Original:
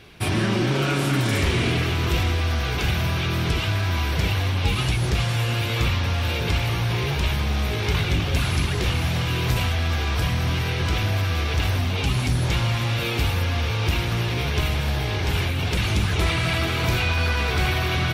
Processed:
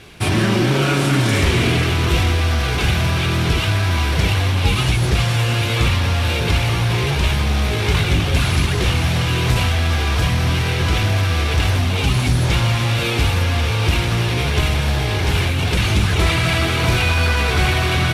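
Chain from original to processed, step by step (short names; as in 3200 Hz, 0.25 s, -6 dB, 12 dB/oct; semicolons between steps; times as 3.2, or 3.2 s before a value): CVSD 64 kbps; gain +5.5 dB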